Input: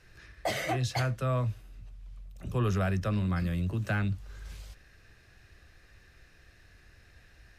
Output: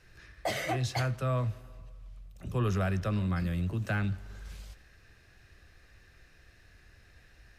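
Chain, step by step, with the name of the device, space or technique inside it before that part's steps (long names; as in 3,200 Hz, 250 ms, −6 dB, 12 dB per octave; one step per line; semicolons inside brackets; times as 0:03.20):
saturated reverb return (on a send at −13 dB: convolution reverb RT60 1.4 s, pre-delay 60 ms + soft clipping −35.5 dBFS, distortion −7 dB)
on the sum: level −1 dB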